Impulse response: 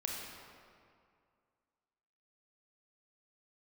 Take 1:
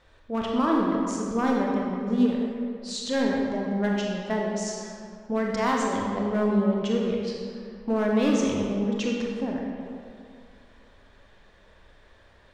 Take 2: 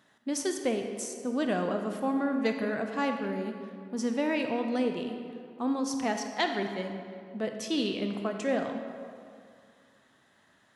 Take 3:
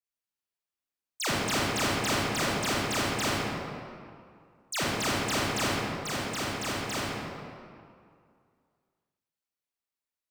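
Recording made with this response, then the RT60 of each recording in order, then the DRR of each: 1; 2.2, 2.2, 2.2 seconds; −2.0, 4.5, −7.0 decibels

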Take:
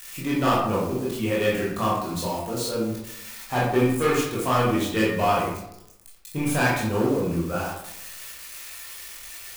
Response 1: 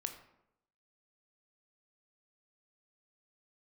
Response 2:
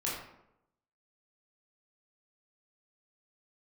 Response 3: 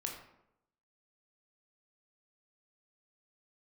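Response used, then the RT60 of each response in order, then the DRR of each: 2; 0.80, 0.80, 0.80 seconds; 6.0, −6.5, 0.5 decibels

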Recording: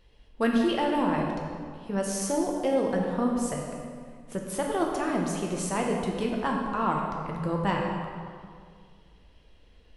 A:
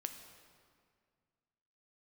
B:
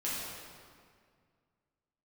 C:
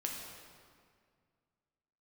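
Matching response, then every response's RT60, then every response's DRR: C; 2.0, 2.0, 2.0 seconds; 6.5, −8.5, −0.5 decibels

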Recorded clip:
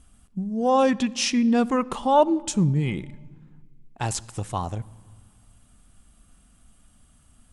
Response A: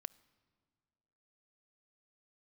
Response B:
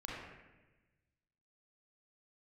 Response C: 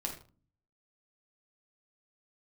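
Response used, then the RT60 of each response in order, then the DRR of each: A; 2.0 s, 1.1 s, non-exponential decay; 19.0, −5.0, 0.5 decibels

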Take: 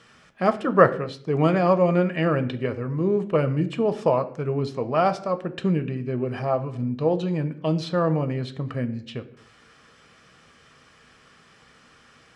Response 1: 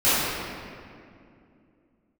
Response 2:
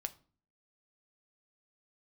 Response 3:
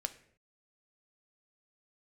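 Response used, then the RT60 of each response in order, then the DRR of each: 3; 2.4, 0.40, 0.60 seconds; −16.5, 9.0, 8.0 decibels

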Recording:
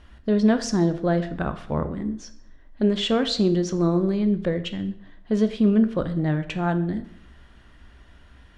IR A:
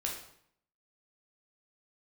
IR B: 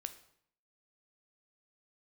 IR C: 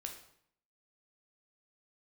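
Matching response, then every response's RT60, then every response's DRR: B; 0.65, 0.65, 0.65 seconds; −1.5, 9.0, 2.5 decibels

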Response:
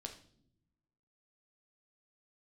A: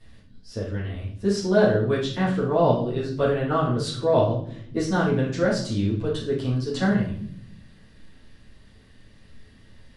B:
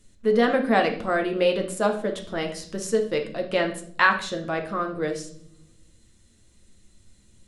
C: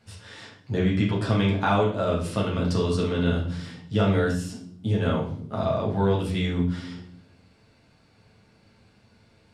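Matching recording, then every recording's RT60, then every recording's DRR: B; non-exponential decay, non-exponential decay, non-exponential decay; −10.5, 3.0, −5.5 decibels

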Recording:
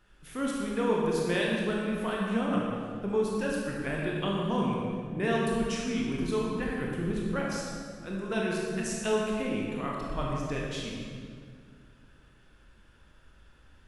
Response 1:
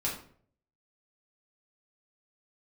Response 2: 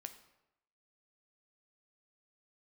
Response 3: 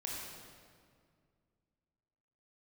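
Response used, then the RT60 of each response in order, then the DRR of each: 3; 0.55, 0.90, 2.1 seconds; −5.5, 7.5, −3.5 decibels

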